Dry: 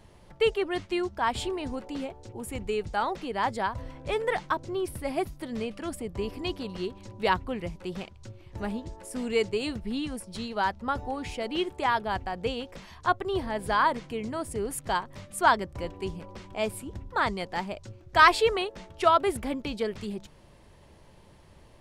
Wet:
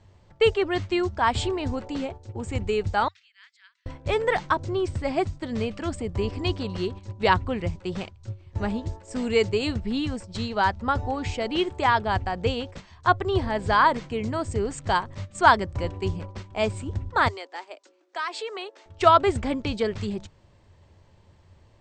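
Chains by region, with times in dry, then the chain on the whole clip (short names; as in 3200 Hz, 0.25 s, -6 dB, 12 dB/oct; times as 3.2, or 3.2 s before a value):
3.08–3.86 Bessel high-pass 3000 Hz, order 8 + tape spacing loss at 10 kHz 21 dB
17.28–18.86 steep high-pass 270 Hz 72 dB/oct + low shelf 430 Hz -6 dB + compressor 2.5:1, threshold -40 dBFS
whole clip: gate -42 dBFS, range -9 dB; Chebyshev low-pass 8400 Hz, order 10; bell 92 Hz +12.5 dB 0.52 oct; gain +5 dB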